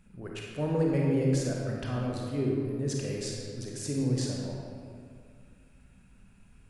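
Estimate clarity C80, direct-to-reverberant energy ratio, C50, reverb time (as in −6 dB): 0.5 dB, −2.5 dB, −1.0 dB, 2.2 s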